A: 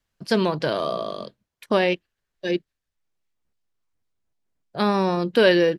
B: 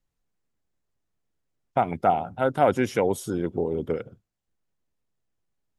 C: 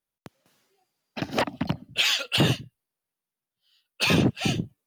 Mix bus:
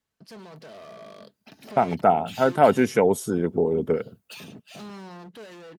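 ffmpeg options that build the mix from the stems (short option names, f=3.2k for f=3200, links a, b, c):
-filter_complex "[0:a]alimiter=limit=-18dB:level=0:latency=1:release=16,volume=-5dB[a];[1:a]equalizer=f=3.4k:t=o:w=0.77:g=-5.5,volume=-2.5dB[b];[2:a]acompressor=threshold=-36dB:ratio=2,crystalizer=i=1.5:c=0,adelay=300,volume=-10.5dB[c];[a][c]amix=inputs=2:normalize=0,asoftclip=type=hard:threshold=-35dB,alimiter=level_in=18.5dB:limit=-24dB:level=0:latency=1:release=257,volume=-18.5dB,volume=0dB[d];[b][d]amix=inputs=2:normalize=0,highpass=90,aecho=1:1:4.6:0.31,dynaudnorm=f=320:g=9:m=6.5dB"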